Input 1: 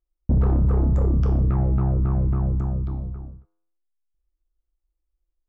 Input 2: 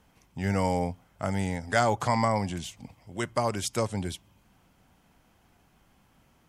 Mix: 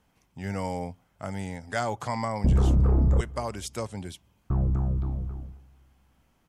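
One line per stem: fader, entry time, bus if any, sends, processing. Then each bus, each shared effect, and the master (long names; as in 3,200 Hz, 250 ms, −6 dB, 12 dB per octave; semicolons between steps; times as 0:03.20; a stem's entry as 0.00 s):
−2.0 dB, 2.15 s, muted 0:03.21–0:04.50, no send, echo send −22 dB, no processing
−5.0 dB, 0.00 s, no send, no echo send, no processing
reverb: not used
echo: repeating echo 228 ms, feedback 45%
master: no processing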